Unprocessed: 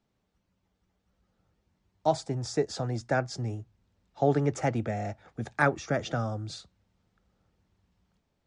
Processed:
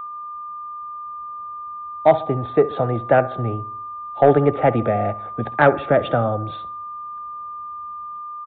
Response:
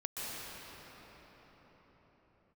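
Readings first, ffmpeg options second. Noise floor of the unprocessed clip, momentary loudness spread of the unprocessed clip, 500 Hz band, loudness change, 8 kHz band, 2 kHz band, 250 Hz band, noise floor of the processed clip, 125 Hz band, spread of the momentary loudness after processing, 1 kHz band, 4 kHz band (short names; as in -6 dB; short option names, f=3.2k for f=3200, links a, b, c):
-77 dBFS, 11 LU, +13.0 dB, +11.0 dB, under -35 dB, +7.5 dB, +8.5 dB, -33 dBFS, +7.0 dB, 15 LU, +13.0 dB, n/a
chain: -filter_complex "[0:a]equalizer=f=580:t=o:w=1.5:g=8,aeval=exprs='val(0)+0.0158*sin(2*PI*1200*n/s)':c=same,asplit=2[a][b];[b]adelay=67,lowpass=f=2.5k:p=1,volume=-17dB,asplit=2[c][d];[d]adelay=67,lowpass=f=2.5k:p=1,volume=0.54,asplit=2[e][f];[f]adelay=67,lowpass=f=2.5k:p=1,volume=0.54,asplit=2[g][h];[h]adelay=67,lowpass=f=2.5k:p=1,volume=0.54,asplit=2[i][j];[j]adelay=67,lowpass=f=2.5k:p=1,volume=0.54[k];[a][c][e][g][i][k]amix=inputs=6:normalize=0,acontrast=82,aresample=8000,aresample=44100"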